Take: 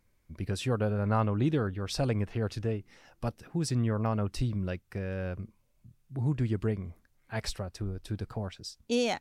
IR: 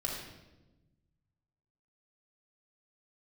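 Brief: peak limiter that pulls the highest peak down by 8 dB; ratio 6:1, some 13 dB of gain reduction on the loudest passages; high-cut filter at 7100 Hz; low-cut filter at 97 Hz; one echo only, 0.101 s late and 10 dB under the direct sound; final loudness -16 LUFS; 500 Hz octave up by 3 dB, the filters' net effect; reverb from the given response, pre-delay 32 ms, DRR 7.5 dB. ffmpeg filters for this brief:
-filter_complex "[0:a]highpass=97,lowpass=7.1k,equalizer=f=500:t=o:g=3.5,acompressor=threshold=-37dB:ratio=6,alimiter=level_in=10dB:limit=-24dB:level=0:latency=1,volume=-10dB,aecho=1:1:101:0.316,asplit=2[a][b];[1:a]atrim=start_sample=2205,adelay=32[c];[b][c]afir=irnorm=-1:irlink=0,volume=-11dB[d];[a][d]amix=inputs=2:normalize=0,volume=27.5dB"

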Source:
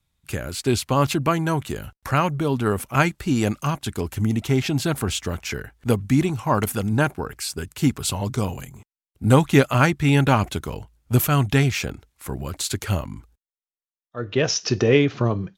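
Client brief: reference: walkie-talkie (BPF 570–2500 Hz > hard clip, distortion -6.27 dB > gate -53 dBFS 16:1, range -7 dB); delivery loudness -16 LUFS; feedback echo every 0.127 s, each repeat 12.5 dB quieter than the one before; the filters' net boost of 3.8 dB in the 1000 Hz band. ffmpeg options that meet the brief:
-af "highpass=570,lowpass=2.5k,equalizer=f=1k:t=o:g=5.5,aecho=1:1:127|254|381:0.237|0.0569|0.0137,asoftclip=type=hard:threshold=-19.5dB,agate=range=-7dB:threshold=-53dB:ratio=16,volume=13dB"

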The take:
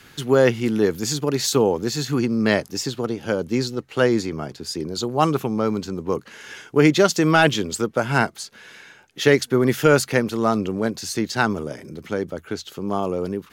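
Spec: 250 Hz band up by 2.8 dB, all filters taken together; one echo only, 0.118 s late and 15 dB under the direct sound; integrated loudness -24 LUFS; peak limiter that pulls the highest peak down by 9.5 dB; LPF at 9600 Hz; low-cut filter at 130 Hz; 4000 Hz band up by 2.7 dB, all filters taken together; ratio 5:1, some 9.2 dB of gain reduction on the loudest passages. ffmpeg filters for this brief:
-af "highpass=130,lowpass=9.6k,equalizer=f=250:t=o:g=4,equalizer=f=4k:t=o:g=3.5,acompressor=threshold=-19dB:ratio=5,alimiter=limit=-16.5dB:level=0:latency=1,aecho=1:1:118:0.178,volume=3dB"

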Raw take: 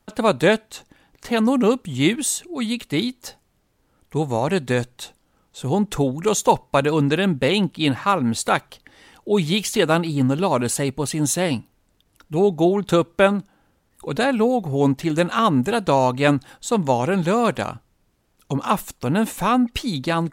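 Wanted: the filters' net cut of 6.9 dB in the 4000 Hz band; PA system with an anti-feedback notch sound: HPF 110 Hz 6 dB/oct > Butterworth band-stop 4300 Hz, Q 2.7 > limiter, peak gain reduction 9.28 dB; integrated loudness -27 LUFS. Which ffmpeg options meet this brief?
-af "highpass=f=110:p=1,asuperstop=centerf=4300:order=8:qfactor=2.7,equalizer=f=4k:t=o:g=-6.5,volume=-3dB,alimiter=limit=-16dB:level=0:latency=1"

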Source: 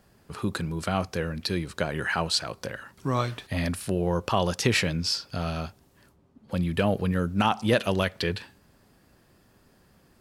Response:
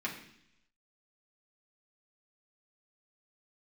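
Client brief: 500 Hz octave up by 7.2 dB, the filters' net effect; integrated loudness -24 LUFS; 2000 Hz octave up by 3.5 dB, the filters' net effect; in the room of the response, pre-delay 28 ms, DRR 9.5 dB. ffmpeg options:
-filter_complex "[0:a]equalizer=f=500:t=o:g=8.5,equalizer=f=2k:t=o:g=4,asplit=2[a][b];[1:a]atrim=start_sample=2205,adelay=28[c];[b][c]afir=irnorm=-1:irlink=0,volume=-14dB[d];[a][d]amix=inputs=2:normalize=0"

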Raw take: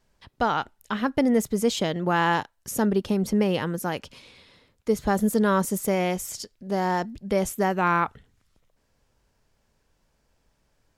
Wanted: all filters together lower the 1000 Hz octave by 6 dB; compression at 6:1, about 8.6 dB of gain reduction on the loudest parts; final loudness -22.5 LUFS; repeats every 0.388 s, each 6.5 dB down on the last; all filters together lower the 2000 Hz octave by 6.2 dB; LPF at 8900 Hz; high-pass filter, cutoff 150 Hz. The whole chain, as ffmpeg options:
-af "highpass=150,lowpass=8.9k,equalizer=f=1k:t=o:g=-6.5,equalizer=f=2k:t=o:g=-5.5,acompressor=threshold=-28dB:ratio=6,aecho=1:1:388|776|1164|1552|1940|2328:0.473|0.222|0.105|0.0491|0.0231|0.0109,volume=10.5dB"

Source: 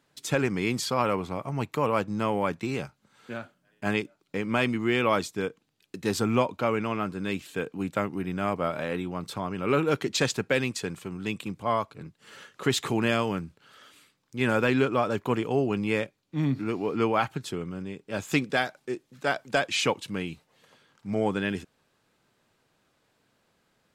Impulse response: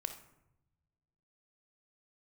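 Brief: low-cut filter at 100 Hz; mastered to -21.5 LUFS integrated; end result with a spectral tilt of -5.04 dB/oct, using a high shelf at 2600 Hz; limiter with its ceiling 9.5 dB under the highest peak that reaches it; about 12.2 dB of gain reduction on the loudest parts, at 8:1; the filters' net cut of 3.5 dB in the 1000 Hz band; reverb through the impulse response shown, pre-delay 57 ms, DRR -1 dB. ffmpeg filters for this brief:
-filter_complex "[0:a]highpass=100,equalizer=f=1k:t=o:g=-3.5,highshelf=f=2.6k:g=-6.5,acompressor=threshold=-33dB:ratio=8,alimiter=level_in=4dB:limit=-24dB:level=0:latency=1,volume=-4dB,asplit=2[a][b];[1:a]atrim=start_sample=2205,adelay=57[c];[b][c]afir=irnorm=-1:irlink=0,volume=1.5dB[d];[a][d]amix=inputs=2:normalize=0,volume=15.5dB"

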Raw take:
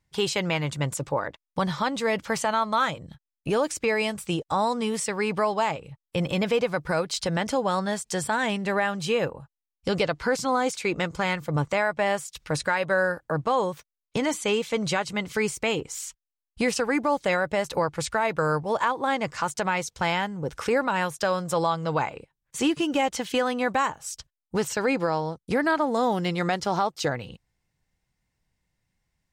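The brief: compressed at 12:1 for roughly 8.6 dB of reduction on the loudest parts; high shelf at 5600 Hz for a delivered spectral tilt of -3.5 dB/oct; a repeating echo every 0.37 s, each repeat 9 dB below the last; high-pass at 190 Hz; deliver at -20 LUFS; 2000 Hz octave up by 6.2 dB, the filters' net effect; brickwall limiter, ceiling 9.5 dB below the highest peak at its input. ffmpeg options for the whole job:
-af "highpass=190,equalizer=f=2k:t=o:g=8.5,highshelf=f=5.6k:g=-6,acompressor=threshold=-25dB:ratio=12,alimiter=limit=-21.5dB:level=0:latency=1,aecho=1:1:370|740|1110|1480:0.355|0.124|0.0435|0.0152,volume=12.5dB"

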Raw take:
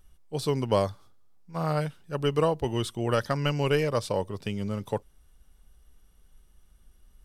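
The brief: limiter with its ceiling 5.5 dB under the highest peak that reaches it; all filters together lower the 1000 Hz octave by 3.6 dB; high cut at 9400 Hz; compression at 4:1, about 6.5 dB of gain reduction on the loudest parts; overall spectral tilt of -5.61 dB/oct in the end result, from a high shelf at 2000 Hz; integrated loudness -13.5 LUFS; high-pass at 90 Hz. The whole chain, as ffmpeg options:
-af "highpass=90,lowpass=9.4k,equalizer=f=1k:t=o:g=-5.5,highshelf=f=2k:g=3.5,acompressor=threshold=-28dB:ratio=4,volume=21.5dB,alimiter=limit=-0.5dB:level=0:latency=1"

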